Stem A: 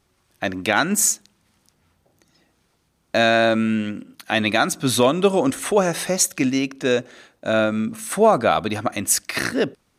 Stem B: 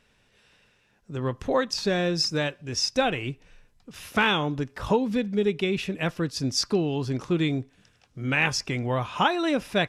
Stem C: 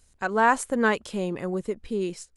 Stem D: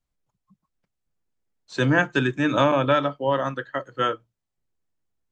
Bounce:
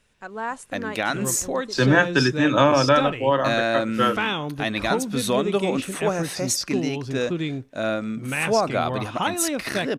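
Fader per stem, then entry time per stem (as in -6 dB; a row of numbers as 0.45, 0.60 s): -6.0, -2.5, -9.5, +2.5 dB; 0.30, 0.00, 0.00, 0.00 s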